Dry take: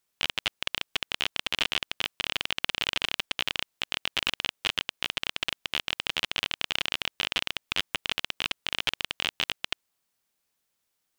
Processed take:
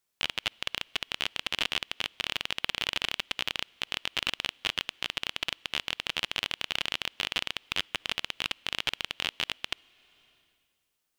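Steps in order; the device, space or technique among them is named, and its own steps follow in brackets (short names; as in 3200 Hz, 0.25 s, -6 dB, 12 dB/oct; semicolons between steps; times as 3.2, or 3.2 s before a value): compressed reverb return (on a send at -12 dB: reverb RT60 1.8 s, pre-delay 50 ms + compressor 8:1, threshold -45 dBFS, peak gain reduction 18 dB); on the sum: gain -2 dB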